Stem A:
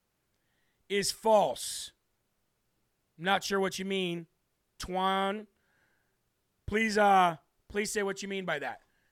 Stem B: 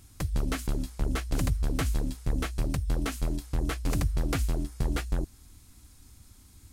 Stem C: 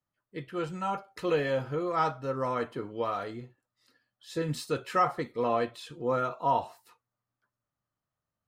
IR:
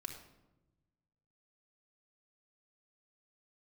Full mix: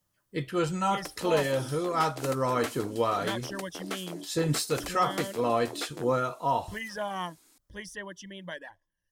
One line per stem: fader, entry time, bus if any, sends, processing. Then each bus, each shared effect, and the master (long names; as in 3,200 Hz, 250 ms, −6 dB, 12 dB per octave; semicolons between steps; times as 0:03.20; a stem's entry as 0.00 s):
−8.5 dB, 0.00 s, no send, de-essing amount 70%; reverb reduction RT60 0.72 s; EQ curve with evenly spaced ripples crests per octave 1.2, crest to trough 13 dB
−2.5 dB, 0.85 s, send −16.5 dB, high-pass filter 330 Hz 24 dB per octave
+1.5 dB, 0.00 s, no send, bass and treble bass 0 dB, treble +10 dB; speech leveller within 4 dB 0.5 s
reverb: on, RT60 1.0 s, pre-delay 3 ms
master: low-shelf EQ 150 Hz +5 dB